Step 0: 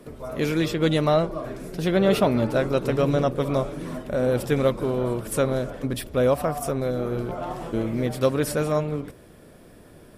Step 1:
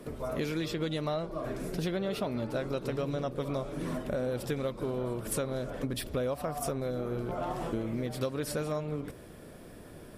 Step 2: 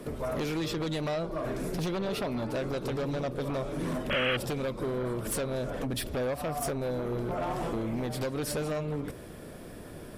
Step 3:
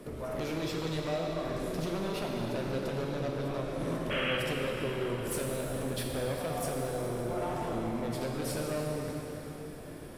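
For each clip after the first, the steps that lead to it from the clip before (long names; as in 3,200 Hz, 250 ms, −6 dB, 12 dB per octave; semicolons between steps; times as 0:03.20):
dynamic equaliser 4,300 Hz, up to +4 dB, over −46 dBFS, Q 1.8; downward compressor 6 to 1, threshold −30 dBFS, peak gain reduction 15 dB
sine wavefolder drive 8 dB, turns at −19.5 dBFS; sound drawn into the spectrogram noise, 0:04.10–0:04.37, 1,100–3,300 Hz −23 dBFS; level −7.5 dB
convolution reverb RT60 4.1 s, pre-delay 7 ms, DRR −1 dB; level −5 dB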